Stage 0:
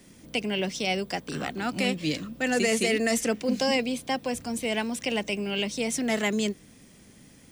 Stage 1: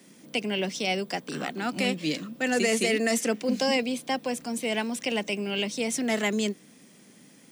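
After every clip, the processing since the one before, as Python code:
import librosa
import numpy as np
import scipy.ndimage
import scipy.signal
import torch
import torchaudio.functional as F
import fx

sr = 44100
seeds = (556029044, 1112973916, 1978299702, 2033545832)

y = scipy.signal.sosfilt(scipy.signal.butter(4, 160.0, 'highpass', fs=sr, output='sos'), x)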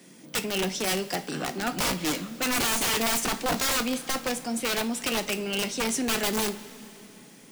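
y = (np.mod(10.0 ** (21.0 / 20.0) * x + 1.0, 2.0) - 1.0) / 10.0 ** (21.0 / 20.0)
y = fx.rev_double_slope(y, sr, seeds[0], early_s=0.27, late_s=3.5, knee_db=-19, drr_db=8.0)
y = 10.0 ** (-21.0 / 20.0) * np.tanh(y / 10.0 ** (-21.0 / 20.0))
y = F.gain(torch.from_numpy(y), 2.0).numpy()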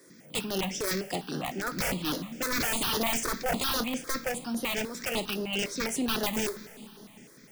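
y = fx.peak_eq(x, sr, hz=8600.0, db=-2.5, octaves=0.77)
y = fx.phaser_held(y, sr, hz=9.9, low_hz=770.0, high_hz=7900.0)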